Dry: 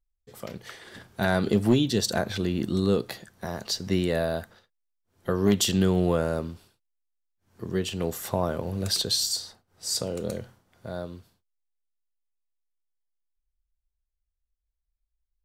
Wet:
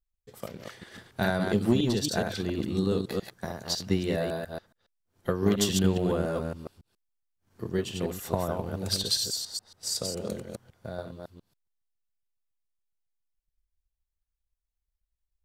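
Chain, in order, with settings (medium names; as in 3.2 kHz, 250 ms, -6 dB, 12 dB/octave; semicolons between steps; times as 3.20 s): chunks repeated in reverse 139 ms, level -3 dB; transient shaper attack +6 dB, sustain 0 dB; trim -5.5 dB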